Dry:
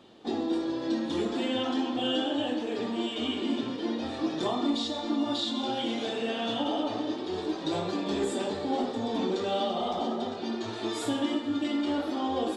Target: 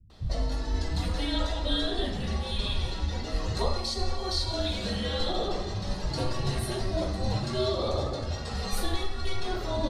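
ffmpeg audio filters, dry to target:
ffmpeg -i in.wav -filter_complex "[0:a]afreqshift=-290,asetrate=56007,aresample=44100,acrossover=split=190[link_01][link_02];[link_02]adelay=100[link_03];[link_01][link_03]amix=inputs=2:normalize=0,volume=2dB" out.wav

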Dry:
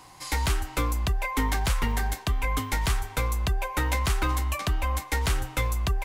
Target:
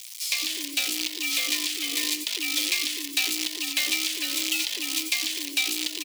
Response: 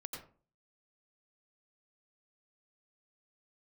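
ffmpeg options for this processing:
-filter_complex "[0:a]agate=range=-11dB:threshold=-34dB:ratio=16:detection=peak,asplit=2[link_01][link_02];[link_02]aeval=exprs='(mod(33.5*val(0)+1,2)-1)/33.5':channel_layout=same,volume=-11dB[link_03];[link_01][link_03]amix=inputs=2:normalize=0,acrusher=bits=6:dc=4:mix=0:aa=0.000001,acrossover=split=240[link_04][link_05];[link_04]adelay=90[link_06];[link_06][link_05]amix=inputs=2:normalize=0,asplit=2[link_07][link_08];[1:a]atrim=start_sample=2205,afade=type=out:start_time=0.17:duration=0.01,atrim=end_sample=7938[link_09];[link_08][link_09]afir=irnorm=-1:irlink=0,volume=-6.5dB[link_10];[link_07][link_10]amix=inputs=2:normalize=0,acompressor=threshold=-28dB:ratio=6,afreqshift=250,acrossover=split=5300[link_11][link_12];[link_12]acompressor=threshold=-49dB:ratio=4:attack=1:release=60[link_13];[link_11][link_13]amix=inputs=2:normalize=0,aexciter=amount=15.4:drive=7:freq=2200,alimiter=limit=-5dB:level=0:latency=1:release=353,volume=-7dB"

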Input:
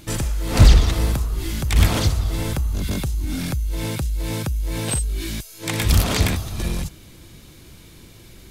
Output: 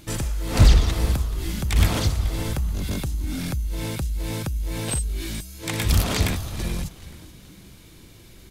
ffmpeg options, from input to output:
ffmpeg -i in.wav -filter_complex "[0:a]asplit=4[link_01][link_02][link_03][link_04];[link_02]adelay=429,afreqshift=-120,volume=-16.5dB[link_05];[link_03]adelay=858,afreqshift=-240,volume=-25.9dB[link_06];[link_04]adelay=1287,afreqshift=-360,volume=-35.2dB[link_07];[link_01][link_05][link_06][link_07]amix=inputs=4:normalize=0,volume=-3dB" out.wav

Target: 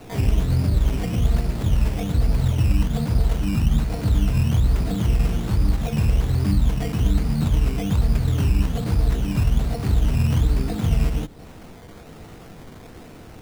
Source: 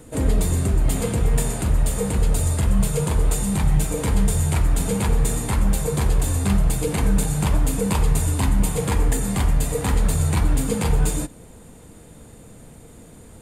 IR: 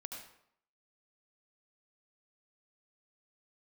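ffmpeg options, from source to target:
-filter_complex "[0:a]equalizer=frequency=2600:width_type=o:width=0.25:gain=7.5,asplit=2[link_01][link_02];[link_02]asetrate=66075,aresample=44100,atempo=0.66742,volume=-1dB[link_03];[link_01][link_03]amix=inputs=2:normalize=0,acrossover=split=220|820[link_04][link_05][link_06];[link_04]acompressor=threshold=-14dB:ratio=4[link_07];[link_05]acompressor=threshold=-35dB:ratio=4[link_08];[link_06]acompressor=threshold=-41dB:ratio=4[link_09];[link_07][link_08][link_09]amix=inputs=3:normalize=0,acrusher=samples=13:mix=1:aa=0.000001:lfo=1:lforange=7.8:lforate=1.2"

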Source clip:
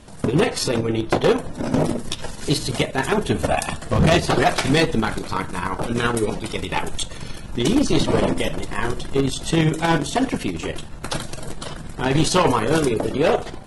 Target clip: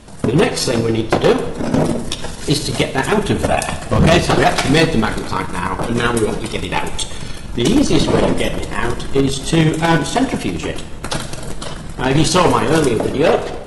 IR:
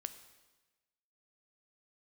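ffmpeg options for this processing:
-filter_complex "[1:a]atrim=start_sample=2205[link_01];[0:a][link_01]afir=irnorm=-1:irlink=0,volume=7.5dB"

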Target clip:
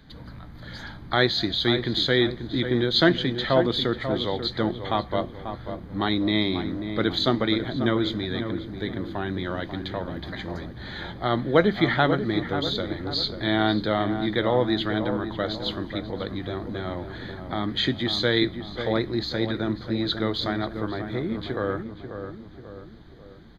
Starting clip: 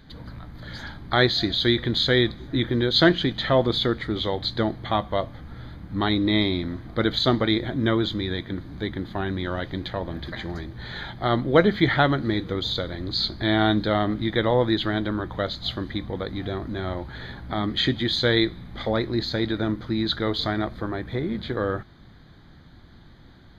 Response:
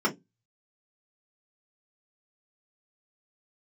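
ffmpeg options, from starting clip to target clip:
-filter_complex "[0:a]asplit=2[link_01][link_02];[link_02]adelay=540,lowpass=frequency=1500:poles=1,volume=-8dB,asplit=2[link_03][link_04];[link_04]adelay=540,lowpass=frequency=1500:poles=1,volume=0.5,asplit=2[link_05][link_06];[link_06]adelay=540,lowpass=frequency=1500:poles=1,volume=0.5,asplit=2[link_07][link_08];[link_08]adelay=540,lowpass=frequency=1500:poles=1,volume=0.5,asplit=2[link_09][link_10];[link_10]adelay=540,lowpass=frequency=1500:poles=1,volume=0.5,asplit=2[link_11][link_12];[link_12]adelay=540,lowpass=frequency=1500:poles=1,volume=0.5[link_13];[link_01][link_03][link_05][link_07][link_09][link_11][link_13]amix=inputs=7:normalize=0,acrossover=split=120[link_14][link_15];[link_14]asoftclip=type=tanh:threshold=-36dB[link_16];[link_16][link_15]amix=inputs=2:normalize=0,volume=-1.5dB"

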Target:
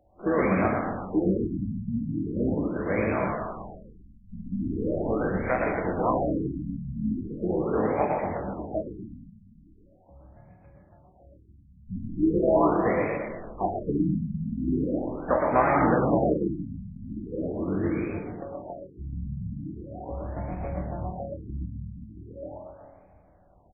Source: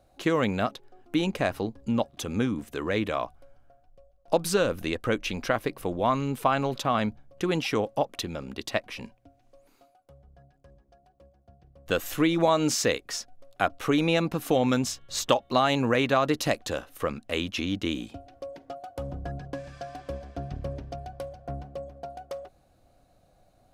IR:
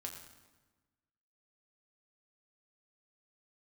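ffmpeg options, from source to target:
-filter_complex "[0:a]asplit=4[link_01][link_02][link_03][link_04];[link_02]asetrate=22050,aresample=44100,atempo=2,volume=-11dB[link_05];[link_03]asetrate=55563,aresample=44100,atempo=0.793701,volume=-10dB[link_06];[link_04]asetrate=66075,aresample=44100,atempo=0.66742,volume=-16dB[link_07];[link_01][link_05][link_06][link_07]amix=inputs=4:normalize=0,asplit=7[link_08][link_09][link_10][link_11][link_12][link_13][link_14];[link_09]adelay=117,afreqshift=40,volume=-3.5dB[link_15];[link_10]adelay=234,afreqshift=80,volume=-10.1dB[link_16];[link_11]adelay=351,afreqshift=120,volume=-16.6dB[link_17];[link_12]adelay=468,afreqshift=160,volume=-23.2dB[link_18];[link_13]adelay=585,afreqshift=200,volume=-29.7dB[link_19];[link_14]adelay=702,afreqshift=240,volume=-36.3dB[link_20];[link_08][link_15][link_16][link_17][link_18][link_19][link_20]amix=inputs=7:normalize=0,acrossover=split=180[link_21][link_22];[link_22]acrusher=bits=2:mode=log:mix=0:aa=0.000001[link_23];[link_21][link_23]amix=inputs=2:normalize=0[link_24];[1:a]atrim=start_sample=2205,asetrate=32193,aresample=44100[link_25];[link_24][link_25]afir=irnorm=-1:irlink=0,afftfilt=real='re*lt(b*sr/1024,250*pow(2600/250,0.5+0.5*sin(2*PI*0.4*pts/sr)))':imag='im*lt(b*sr/1024,250*pow(2600/250,0.5+0.5*sin(2*PI*0.4*pts/sr)))':win_size=1024:overlap=0.75"

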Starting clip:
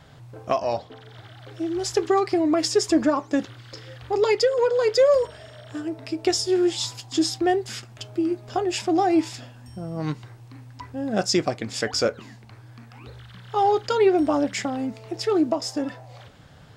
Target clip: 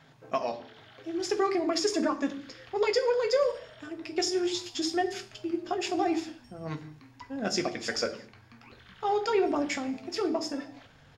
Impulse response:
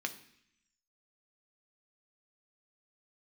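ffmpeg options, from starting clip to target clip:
-filter_complex "[0:a]atempo=1.5[link_01];[1:a]atrim=start_sample=2205,afade=type=out:start_time=0.31:duration=0.01,atrim=end_sample=14112[link_02];[link_01][link_02]afir=irnorm=-1:irlink=0,asubboost=boost=8:cutoff=59,volume=-5.5dB"

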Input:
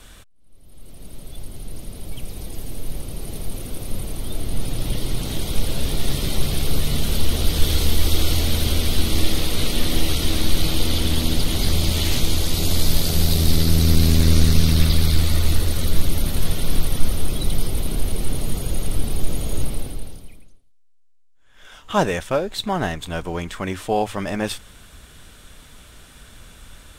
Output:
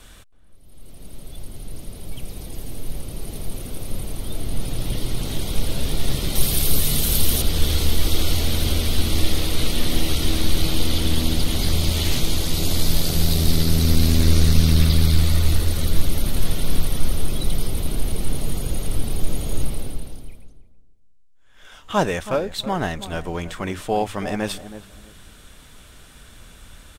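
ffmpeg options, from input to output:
ffmpeg -i in.wav -filter_complex "[0:a]asettb=1/sr,asplit=3[link_01][link_02][link_03];[link_01]atrim=end=6.354[link_04];[link_02]atrim=start=6.35:end=7.42,asetpts=PTS-STARTPTS,afade=type=in:duration=0.004:curve=qsin,afade=type=out:start_time=1.066:duration=0.004:curve=qsin,aemphasis=mode=production:type=50kf[link_05];[link_03]atrim=start=7.416[link_06];[link_04][link_05]acrossfade=duration=0.004:curve1=hsin:curve2=qsin[link_07];[link_07][link_06]acrossfade=duration=0.004:curve1=qsin:curve2=hsin,asplit=2[link_08][link_09];[link_09]adelay=323,lowpass=frequency=830:poles=1,volume=-11.5dB,asplit=2[link_10][link_11];[link_11]adelay=323,lowpass=frequency=830:poles=1,volume=0.24,asplit=2[link_12][link_13];[link_13]adelay=323,lowpass=frequency=830:poles=1,volume=0.24[link_14];[link_08][link_10][link_12][link_14]amix=inputs=4:normalize=0,volume=-1dB" out.wav

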